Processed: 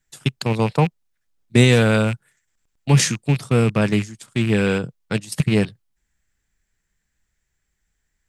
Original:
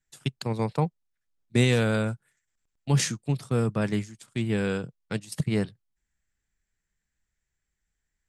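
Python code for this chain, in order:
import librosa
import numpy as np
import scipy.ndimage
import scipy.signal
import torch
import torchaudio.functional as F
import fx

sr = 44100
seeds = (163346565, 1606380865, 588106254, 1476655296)

y = fx.rattle_buzz(x, sr, strikes_db=-30.0, level_db=-27.0)
y = F.gain(torch.from_numpy(y), 8.0).numpy()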